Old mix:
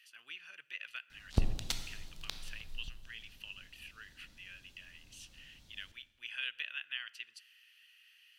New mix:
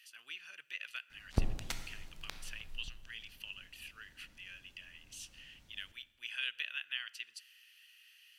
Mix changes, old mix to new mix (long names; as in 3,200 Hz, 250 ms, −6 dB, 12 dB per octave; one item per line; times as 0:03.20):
background: add high shelf with overshoot 2,800 Hz −8.5 dB, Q 1.5
master: add bass and treble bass −2 dB, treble +6 dB